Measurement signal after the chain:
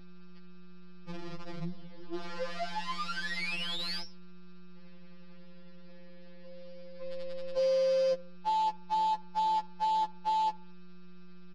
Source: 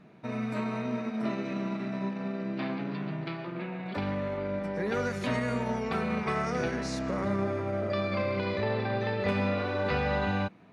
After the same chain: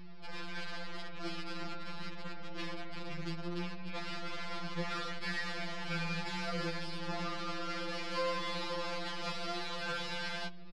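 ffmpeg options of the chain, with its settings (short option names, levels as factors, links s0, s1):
-filter_complex "[0:a]equalizer=f=240:w=2.7:g=-12.5,aeval=exprs='val(0)+0.00708*(sin(2*PI*60*n/s)+sin(2*PI*2*60*n/s)/2+sin(2*PI*3*60*n/s)/3+sin(2*PI*4*60*n/s)/4+sin(2*PI*5*60*n/s)/5)':c=same,aresample=11025,acrusher=bits=6:dc=4:mix=0:aa=0.000001,aresample=44100,asoftclip=type=tanh:threshold=0.0596,asplit=2[s0][s1];[s1]adelay=74,lowpass=f=2000:p=1,volume=0.0631,asplit=2[s2][s3];[s3]adelay=74,lowpass=f=2000:p=1,volume=0.44,asplit=2[s4][s5];[s5]adelay=74,lowpass=f=2000:p=1,volume=0.44[s6];[s2][s4][s6]amix=inputs=3:normalize=0[s7];[s0][s7]amix=inputs=2:normalize=0,afftfilt=real='re*2.83*eq(mod(b,8),0)':imag='im*2.83*eq(mod(b,8),0)':win_size=2048:overlap=0.75"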